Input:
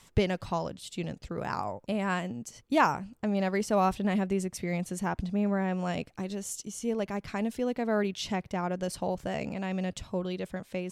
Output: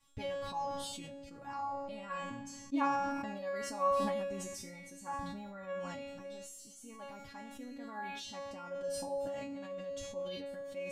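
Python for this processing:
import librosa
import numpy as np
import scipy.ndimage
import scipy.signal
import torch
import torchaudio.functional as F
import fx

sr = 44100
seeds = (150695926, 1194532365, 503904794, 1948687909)

y = fx.dynamic_eq(x, sr, hz=1000.0, q=2.3, threshold_db=-46.0, ratio=4.0, max_db=7)
y = fx.comb_fb(y, sr, f0_hz=280.0, decay_s=0.61, harmonics='all', damping=0.0, mix_pct=100)
y = fx.lowpass(y, sr, hz=7800.0, slope=12, at=(1.86, 3.11))
y = fx.peak_eq(y, sr, hz=100.0, db=12.5, octaves=1.2)
y = fx.room_shoebox(y, sr, seeds[0], volume_m3=1000.0, walls='mixed', distance_m=0.34)
y = fx.sustainer(y, sr, db_per_s=25.0)
y = y * librosa.db_to_amplitude(4.5)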